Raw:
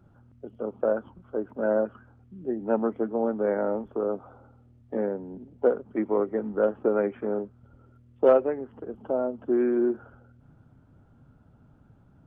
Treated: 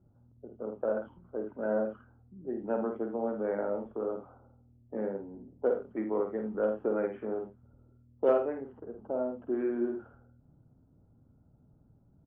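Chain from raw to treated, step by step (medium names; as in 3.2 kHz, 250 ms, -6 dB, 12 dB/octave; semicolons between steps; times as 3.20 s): level-controlled noise filter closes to 630 Hz, open at -21.5 dBFS; on a send: multi-tap echo 51/79 ms -6/-12 dB; on the sum: trim -7 dB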